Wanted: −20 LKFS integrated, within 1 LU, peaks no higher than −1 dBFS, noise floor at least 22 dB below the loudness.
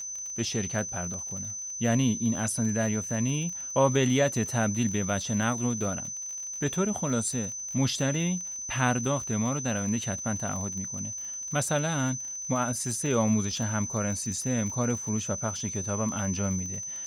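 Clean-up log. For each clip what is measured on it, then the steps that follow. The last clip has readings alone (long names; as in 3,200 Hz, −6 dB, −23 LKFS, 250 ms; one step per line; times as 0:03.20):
crackle rate 37 per second; interfering tone 6,100 Hz; level of the tone −34 dBFS; integrated loudness −28.5 LKFS; sample peak −11.0 dBFS; target loudness −20.0 LKFS
→ click removal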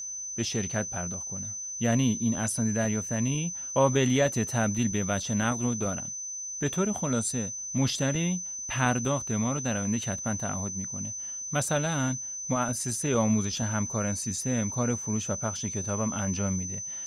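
crackle rate 0 per second; interfering tone 6,100 Hz; level of the tone −34 dBFS
→ notch filter 6,100 Hz, Q 30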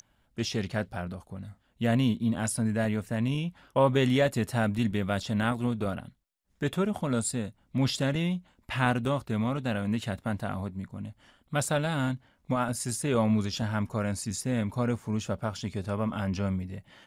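interfering tone none found; integrated loudness −29.5 LKFS; sample peak −11.5 dBFS; target loudness −20.0 LKFS
→ level +9.5 dB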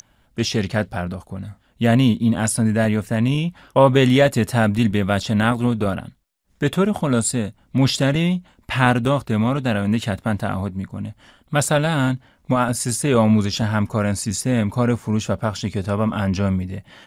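integrated loudness −20.0 LKFS; sample peak −2.0 dBFS; background noise floor −60 dBFS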